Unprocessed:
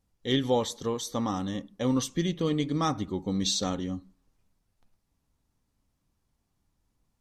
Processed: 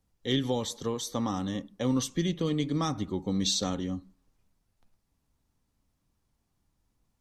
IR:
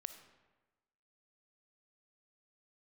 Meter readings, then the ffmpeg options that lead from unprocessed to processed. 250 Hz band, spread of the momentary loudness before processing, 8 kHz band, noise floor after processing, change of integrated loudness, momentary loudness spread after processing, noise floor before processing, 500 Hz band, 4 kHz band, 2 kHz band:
−1.0 dB, 6 LU, 0.0 dB, −77 dBFS, −1.0 dB, 6 LU, −77 dBFS, −3.0 dB, −0.5 dB, −2.0 dB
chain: -filter_complex "[0:a]acrossover=split=270|3000[link_01][link_02][link_03];[link_02]acompressor=threshold=-29dB:ratio=6[link_04];[link_01][link_04][link_03]amix=inputs=3:normalize=0"

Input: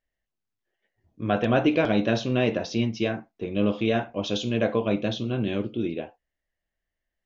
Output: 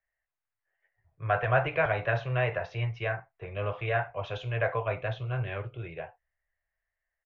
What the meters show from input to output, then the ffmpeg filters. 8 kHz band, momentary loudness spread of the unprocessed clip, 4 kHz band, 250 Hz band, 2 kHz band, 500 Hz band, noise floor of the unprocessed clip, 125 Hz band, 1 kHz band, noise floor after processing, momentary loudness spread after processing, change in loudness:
can't be measured, 9 LU, −11.5 dB, −20.5 dB, +1.5 dB, −5.0 dB, −85 dBFS, −1.0 dB, 0.0 dB, below −85 dBFS, 14 LU, −5.0 dB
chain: -filter_complex "[0:a]firequalizer=gain_entry='entry(150,0);entry(220,-30);entry(400,-3);entry(660,7);entry(1200,10);entry(1900,12);entry(3300,-5);entry(5100,-14)':delay=0.05:min_phase=1,acrossover=split=170|740|3400[link_01][link_02][link_03][link_04];[link_01]dynaudnorm=framelen=200:gausssize=9:maxgain=9dB[link_05];[link_05][link_02][link_03][link_04]amix=inputs=4:normalize=0,volume=-8dB"

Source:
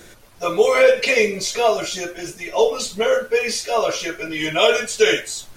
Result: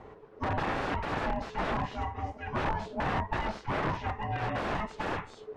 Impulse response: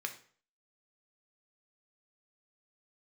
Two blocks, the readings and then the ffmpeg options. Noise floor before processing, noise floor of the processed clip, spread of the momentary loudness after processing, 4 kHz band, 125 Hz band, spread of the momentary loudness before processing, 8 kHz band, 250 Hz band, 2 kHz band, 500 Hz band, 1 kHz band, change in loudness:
−45 dBFS, −51 dBFS, 4 LU, −21.0 dB, +4.5 dB, 12 LU, below −30 dB, −6.5 dB, −14.0 dB, −20.0 dB, −6.0 dB, −14.5 dB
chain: -af "aeval=exprs='val(0)*sin(2*PI*430*n/s)':channel_layout=same,aeval=exprs='(mod(8.41*val(0)+1,2)-1)/8.41':channel_layout=same,lowpass=1200"

